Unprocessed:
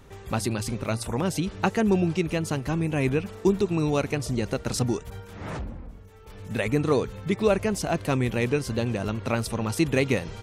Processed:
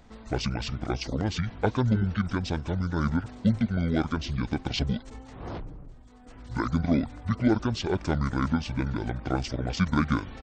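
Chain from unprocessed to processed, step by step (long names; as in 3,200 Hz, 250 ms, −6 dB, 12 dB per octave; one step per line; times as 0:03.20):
low-shelf EQ 230 Hz −4.5 dB
pitch shifter −10 semitones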